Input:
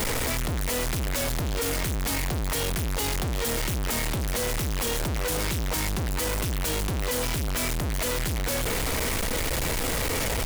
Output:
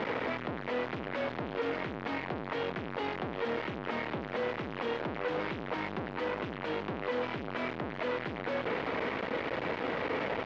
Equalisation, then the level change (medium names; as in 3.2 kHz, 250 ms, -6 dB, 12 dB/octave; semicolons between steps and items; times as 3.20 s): high-pass 240 Hz 12 dB/octave; low-pass 2.7 kHz 12 dB/octave; distance through air 250 m; -1.0 dB